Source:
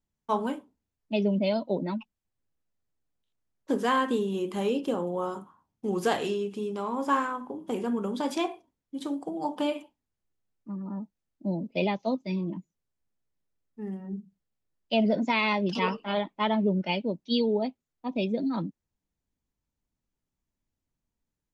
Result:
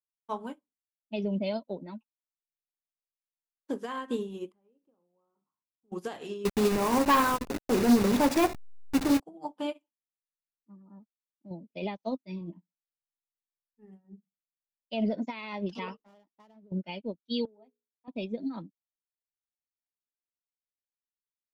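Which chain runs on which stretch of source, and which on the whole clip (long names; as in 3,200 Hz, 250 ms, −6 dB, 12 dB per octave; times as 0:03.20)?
0:04.52–0:05.92: low-pass filter 1,500 Hz + downward compressor 2.5 to 1, threshold −47 dBFS
0:06.45–0:09.20: hold until the input has moved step −33.5 dBFS + notch filter 3,200 Hz, Q 9.1 + leveller curve on the samples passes 3
0:11.02–0:11.51: slack as between gear wheels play −55.5 dBFS + downward compressor 2 to 1, threshold −34 dBFS
0:12.40–0:14.05: double-tracking delay 12 ms −11 dB + flutter between parallel walls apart 9.8 metres, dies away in 0.22 s
0:15.97–0:16.72: running median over 15 samples + downward compressor 8 to 1, threshold −34 dBFS + highs frequency-modulated by the lows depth 0.13 ms
0:17.45–0:18.08: mains-hum notches 60/120/180/240/300/360/420/480/540 Hz + downward compressor 5 to 1, threshold −33 dBFS + band-pass filter 250–2,500 Hz
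whole clip: brickwall limiter −18.5 dBFS; expander for the loud parts 2.5 to 1, over −45 dBFS; level +4 dB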